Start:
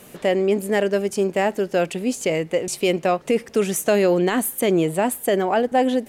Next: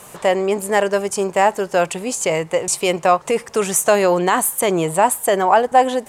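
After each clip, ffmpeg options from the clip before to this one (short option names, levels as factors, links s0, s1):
-af "equalizer=f=125:t=o:w=1:g=4,equalizer=f=250:t=o:w=1:g=-7,equalizer=f=1000:t=o:w=1:g=12,equalizer=f=8000:t=o:w=1:g=9,volume=1.12"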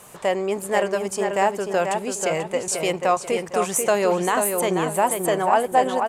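-filter_complex "[0:a]asplit=2[s0][s1];[s1]adelay=488,lowpass=f=3800:p=1,volume=0.562,asplit=2[s2][s3];[s3]adelay=488,lowpass=f=3800:p=1,volume=0.33,asplit=2[s4][s5];[s5]adelay=488,lowpass=f=3800:p=1,volume=0.33,asplit=2[s6][s7];[s7]adelay=488,lowpass=f=3800:p=1,volume=0.33[s8];[s0][s2][s4][s6][s8]amix=inputs=5:normalize=0,volume=0.531"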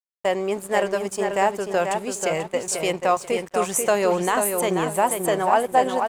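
-af "agate=range=0.0224:threshold=0.0447:ratio=3:detection=peak,aeval=exprs='sgn(val(0))*max(abs(val(0))-0.00531,0)':c=same"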